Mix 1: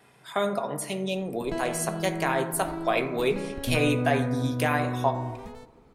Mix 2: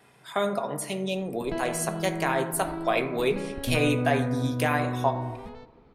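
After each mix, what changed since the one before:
background: add LPF 4700 Hz 24 dB/oct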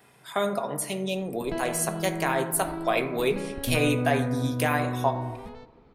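master: add high shelf 12000 Hz +10.5 dB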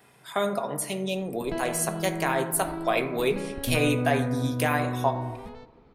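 none

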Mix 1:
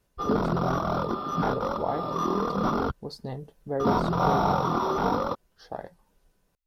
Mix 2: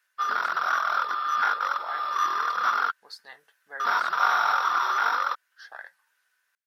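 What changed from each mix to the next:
background +4.0 dB; master: add resonant high-pass 1600 Hz, resonance Q 4.4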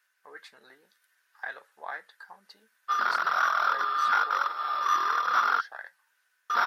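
background: entry +2.70 s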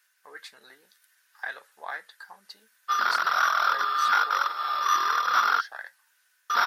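master: add high shelf 2700 Hz +9.5 dB

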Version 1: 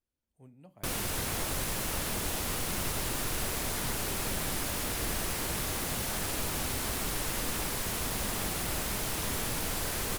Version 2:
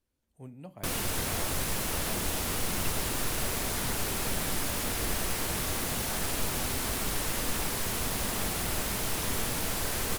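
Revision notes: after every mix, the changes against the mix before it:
speech +9.0 dB; background: send on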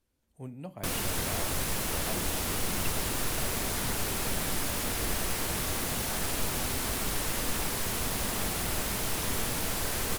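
speech +4.0 dB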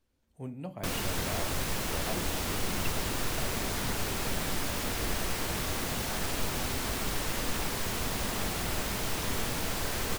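speech: send +7.0 dB; master: add bell 11000 Hz -6.5 dB 0.85 oct

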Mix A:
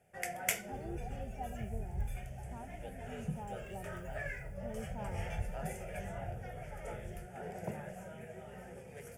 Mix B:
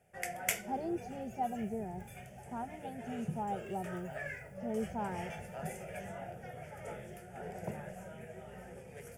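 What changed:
speech +9.0 dB; second sound: add HPF 190 Hz 12 dB/oct

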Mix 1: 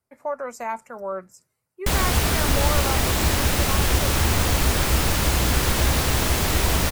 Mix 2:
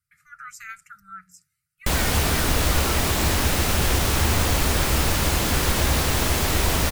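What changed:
speech: add brick-wall FIR band-stop 180–1200 Hz; master: add notches 60/120/180 Hz

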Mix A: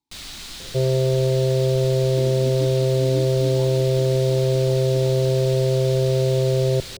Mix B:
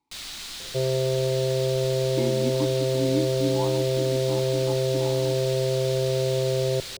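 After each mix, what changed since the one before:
speech +11.0 dB; master: add low shelf 370 Hz -8.5 dB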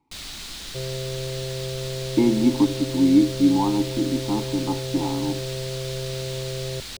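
speech +6.0 dB; second sound -11.5 dB; master: add low shelf 370 Hz +8.5 dB

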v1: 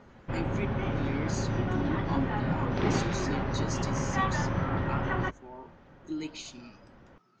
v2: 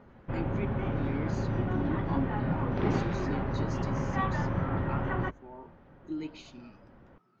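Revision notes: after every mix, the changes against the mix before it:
master: add tape spacing loss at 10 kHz 22 dB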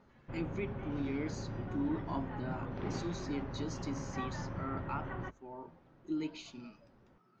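background -10.5 dB; master: add high shelf 5800 Hz +5 dB

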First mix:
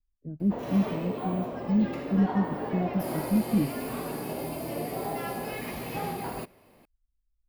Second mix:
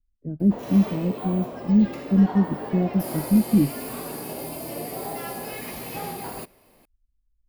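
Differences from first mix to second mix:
speech +8.0 dB; master: add tone controls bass -2 dB, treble +7 dB

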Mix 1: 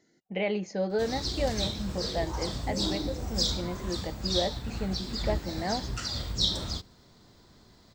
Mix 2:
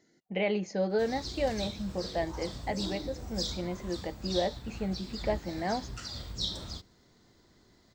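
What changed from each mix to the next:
background -7.0 dB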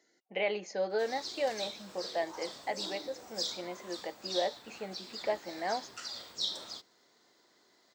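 master: add HPF 460 Hz 12 dB/oct

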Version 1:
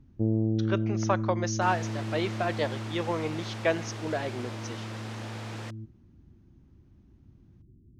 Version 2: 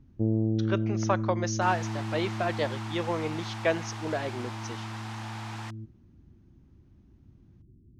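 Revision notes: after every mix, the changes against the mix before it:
second sound: add resonant low shelf 660 Hz -7 dB, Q 3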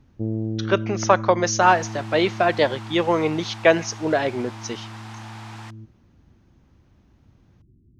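speech +10.5 dB

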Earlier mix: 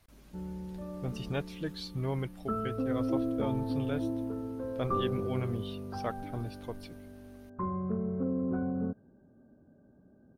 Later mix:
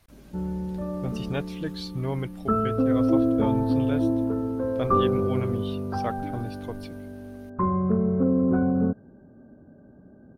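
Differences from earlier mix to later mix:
speech +4.0 dB; background +10.0 dB

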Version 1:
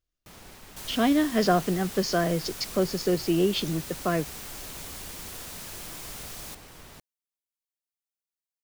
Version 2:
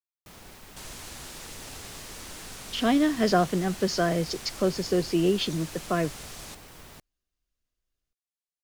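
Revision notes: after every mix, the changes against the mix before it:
speech: entry +1.85 s; second sound: add LPF 9900 Hz 12 dB/oct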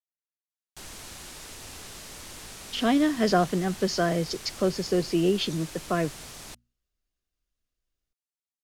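first sound: muted

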